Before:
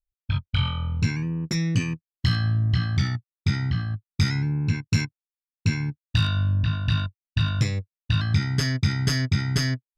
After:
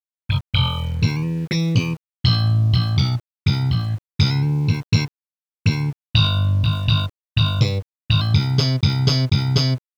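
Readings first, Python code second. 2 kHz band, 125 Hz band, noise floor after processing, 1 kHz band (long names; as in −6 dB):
+1.0 dB, +5.5 dB, below −85 dBFS, +6.0 dB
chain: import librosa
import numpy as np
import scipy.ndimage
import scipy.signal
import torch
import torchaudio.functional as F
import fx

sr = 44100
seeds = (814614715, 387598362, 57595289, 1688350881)

y = fx.graphic_eq_10(x, sr, hz=(125, 500, 1000, 2000, 4000), db=(6, 10, 9, 10, 8))
y = fx.env_phaser(y, sr, low_hz=460.0, high_hz=1800.0, full_db=-16.0)
y = np.where(np.abs(y) >= 10.0 ** (-38.0 / 20.0), y, 0.0)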